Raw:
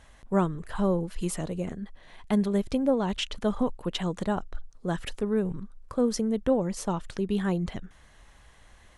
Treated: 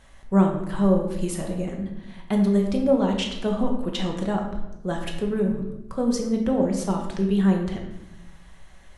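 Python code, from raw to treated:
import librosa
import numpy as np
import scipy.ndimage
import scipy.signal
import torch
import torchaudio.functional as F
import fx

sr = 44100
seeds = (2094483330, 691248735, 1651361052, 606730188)

y = fx.room_shoebox(x, sr, seeds[0], volume_m3=350.0, walls='mixed', distance_m=1.1)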